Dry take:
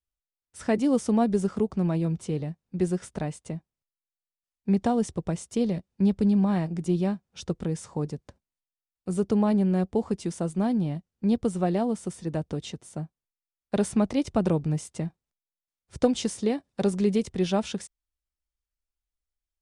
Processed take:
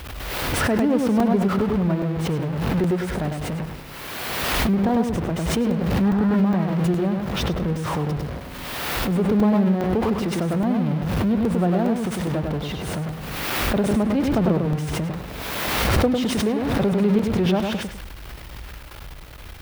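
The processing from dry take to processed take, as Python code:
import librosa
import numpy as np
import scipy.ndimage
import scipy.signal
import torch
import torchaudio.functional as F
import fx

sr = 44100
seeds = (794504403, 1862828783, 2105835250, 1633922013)

p1 = x + 0.5 * 10.0 ** (-26.0 / 20.0) * np.sign(x)
p2 = fx.high_shelf(p1, sr, hz=5300.0, db=-11.5)
p3 = p2 + fx.echo_feedback(p2, sr, ms=101, feedback_pct=26, wet_db=-4.5, dry=0)
p4 = fx.spec_box(p3, sr, start_s=6.03, length_s=0.34, low_hz=670.0, high_hz=2000.0, gain_db=7)
p5 = scipy.signal.sosfilt(scipy.signal.butter(2, 41.0, 'highpass', fs=sr, output='sos'), p4)
p6 = fx.peak_eq(p5, sr, hz=7200.0, db=-9.5, octaves=1.2)
p7 = fx.buffer_crackle(p6, sr, first_s=0.38, period_s=0.41, block=128, kind='zero')
y = fx.pre_swell(p7, sr, db_per_s=25.0)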